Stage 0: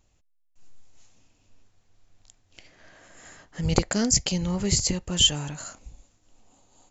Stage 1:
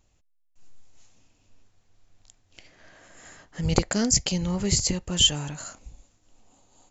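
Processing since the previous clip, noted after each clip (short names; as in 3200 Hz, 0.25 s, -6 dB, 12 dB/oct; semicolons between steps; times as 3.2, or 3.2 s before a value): nothing audible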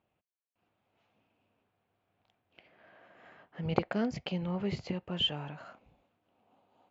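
speaker cabinet 170–2800 Hz, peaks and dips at 290 Hz -4 dB, 700 Hz +3 dB, 1900 Hz -5 dB; gain -4.5 dB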